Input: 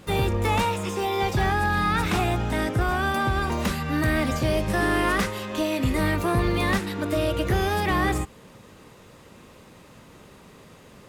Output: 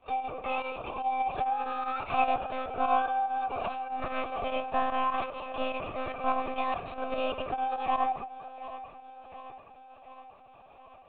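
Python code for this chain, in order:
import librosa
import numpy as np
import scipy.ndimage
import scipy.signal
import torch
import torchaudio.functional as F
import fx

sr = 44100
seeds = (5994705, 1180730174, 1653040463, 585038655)

p1 = fx.octave_divider(x, sr, octaves=1, level_db=2.0)
p2 = scipy.signal.sosfilt(scipy.signal.butter(2, 87.0, 'highpass', fs=sr, output='sos'), p1)
p3 = fx.low_shelf(p2, sr, hz=130.0, db=-5.5)
p4 = fx.rider(p3, sr, range_db=10, speed_s=0.5)
p5 = p3 + (p4 * librosa.db_to_amplitude(-1.5))
p6 = fx.vowel_filter(p5, sr, vowel='a')
p7 = fx.volume_shaper(p6, sr, bpm=147, per_beat=2, depth_db=-18, release_ms=65.0, shape='fast start')
p8 = p7 + fx.echo_feedback(p7, sr, ms=726, feedback_pct=60, wet_db=-14.5, dry=0)
p9 = fx.rev_fdn(p8, sr, rt60_s=1.8, lf_ratio=0.85, hf_ratio=0.35, size_ms=81.0, drr_db=16.5)
y = fx.lpc_monotone(p9, sr, seeds[0], pitch_hz=260.0, order=16)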